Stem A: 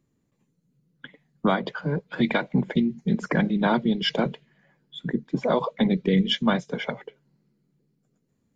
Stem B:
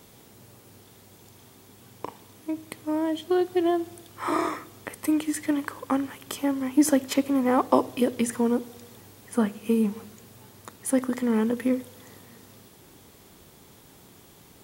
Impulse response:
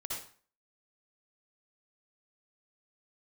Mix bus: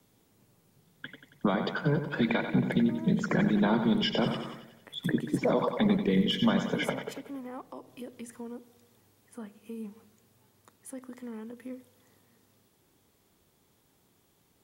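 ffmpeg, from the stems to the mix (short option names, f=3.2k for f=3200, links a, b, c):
-filter_complex "[0:a]alimiter=limit=-16.5dB:level=0:latency=1:release=68,volume=0dB,asplit=2[a][b];[b]volume=-9dB[c];[1:a]alimiter=limit=-16.5dB:level=0:latency=1:release=150,volume=-15.5dB[d];[c]aecho=0:1:92|184|276|368|460|552|644|736:1|0.55|0.303|0.166|0.0915|0.0503|0.0277|0.0152[e];[a][d][e]amix=inputs=3:normalize=0,acrossover=split=480[f][g];[g]acompressor=threshold=-27dB:ratio=6[h];[f][h]amix=inputs=2:normalize=0"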